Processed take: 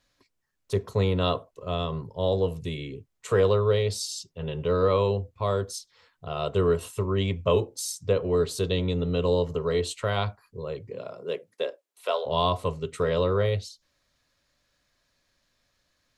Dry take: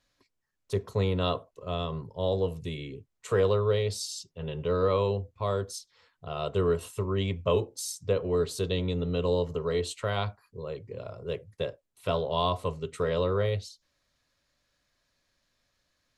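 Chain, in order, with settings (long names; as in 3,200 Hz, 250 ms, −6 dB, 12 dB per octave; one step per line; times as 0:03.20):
0:10.90–0:12.25: high-pass filter 140 Hz → 500 Hz 24 dB per octave
level +3 dB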